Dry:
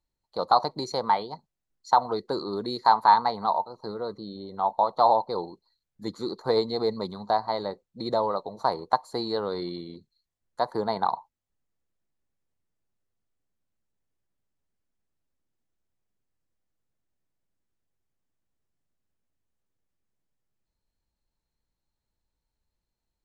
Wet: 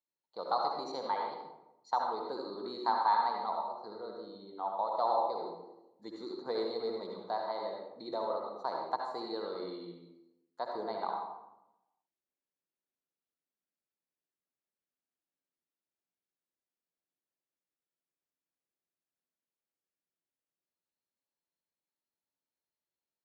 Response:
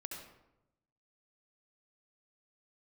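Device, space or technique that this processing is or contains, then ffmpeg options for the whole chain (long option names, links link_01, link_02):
supermarket ceiling speaker: -filter_complex "[0:a]highpass=260,lowpass=5700[link_01];[1:a]atrim=start_sample=2205[link_02];[link_01][link_02]afir=irnorm=-1:irlink=0,volume=-6.5dB"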